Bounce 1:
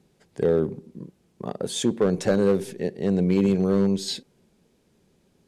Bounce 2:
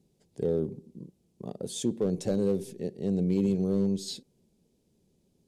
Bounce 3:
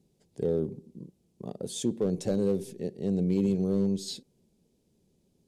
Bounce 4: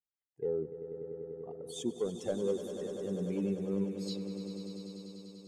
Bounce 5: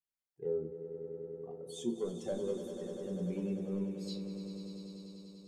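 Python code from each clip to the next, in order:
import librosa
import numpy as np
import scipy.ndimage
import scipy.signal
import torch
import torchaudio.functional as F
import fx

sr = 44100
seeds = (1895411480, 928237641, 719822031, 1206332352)

y1 = fx.peak_eq(x, sr, hz=1500.0, db=-14.5, octaves=1.8)
y1 = F.gain(torch.from_numpy(y1), -4.5).numpy()
y2 = y1
y3 = fx.bin_expand(y2, sr, power=2.0)
y3 = fx.bass_treble(y3, sr, bass_db=-10, treble_db=-7)
y3 = fx.echo_swell(y3, sr, ms=98, loudest=5, wet_db=-12.5)
y4 = fx.room_shoebox(y3, sr, seeds[0], volume_m3=220.0, walls='furnished', distance_m=1.1)
y4 = F.gain(torch.from_numpy(y4), -5.0).numpy()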